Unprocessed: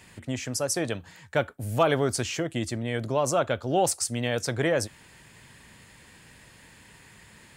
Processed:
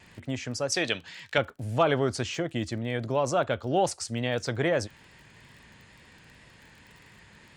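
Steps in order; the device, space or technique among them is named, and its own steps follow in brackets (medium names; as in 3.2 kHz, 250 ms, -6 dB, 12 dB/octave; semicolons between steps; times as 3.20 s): lo-fi chain (low-pass 5.6 kHz 12 dB/octave; wow and flutter; crackle 29 per s -42 dBFS); 0.72–1.38 s: frequency weighting D; trim -1 dB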